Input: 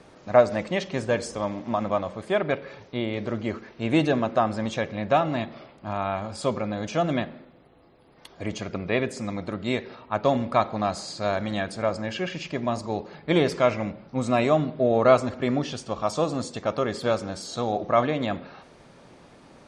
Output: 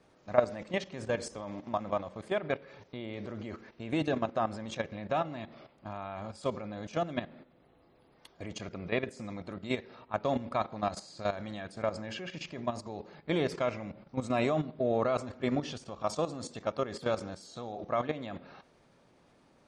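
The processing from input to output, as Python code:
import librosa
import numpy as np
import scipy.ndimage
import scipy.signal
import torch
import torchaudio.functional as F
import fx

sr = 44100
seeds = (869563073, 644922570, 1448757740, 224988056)

y = fx.level_steps(x, sr, step_db=12)
y = y * librosa.db_to_amplitude(-4.0)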